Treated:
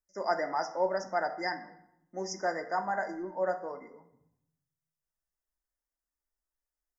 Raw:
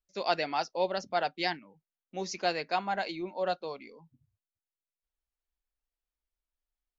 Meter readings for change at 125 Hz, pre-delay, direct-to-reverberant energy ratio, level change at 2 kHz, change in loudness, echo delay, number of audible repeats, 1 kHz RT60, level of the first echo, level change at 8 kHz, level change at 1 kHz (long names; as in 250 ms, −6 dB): −4.0 dB, 3 ms, 6.0 dB, −0.5 dB, −0.5 dB, no echo audible, no echo audible, 0.80 s, no echo audible, can't be measured, −0.5 dB